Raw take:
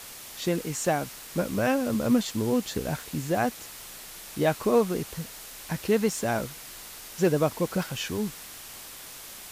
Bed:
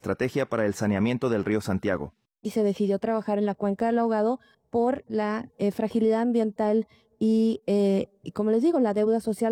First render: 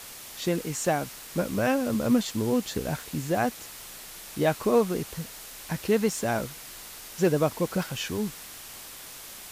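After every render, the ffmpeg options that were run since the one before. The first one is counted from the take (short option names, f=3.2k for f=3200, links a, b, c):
-af anull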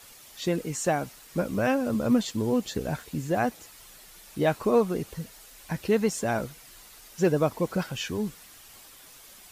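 -af "afftdn=nr=9:nf=-43"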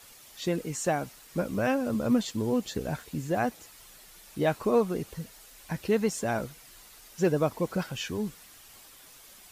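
-af "volume=-2dB"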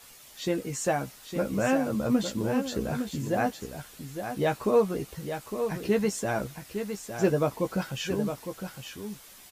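-filter_complex "[0:a]asplit=2[a][b];[b]adelay=15,volume=-7dB[c];[a][c]amix=inputs=2:normalize=0,aecho=1:1:859:0.398"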